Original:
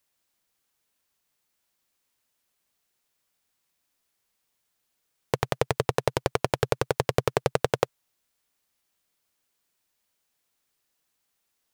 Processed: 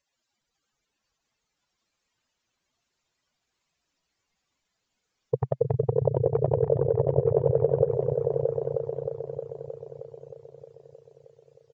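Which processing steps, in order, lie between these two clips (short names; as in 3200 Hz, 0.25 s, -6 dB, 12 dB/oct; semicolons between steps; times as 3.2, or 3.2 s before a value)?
spectral contrast raised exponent 3; downsampling 16000 Hz; repeats that get brighter 0.312 s, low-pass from 200 Hz, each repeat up 2 oct, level 0 dB; gain +1 dB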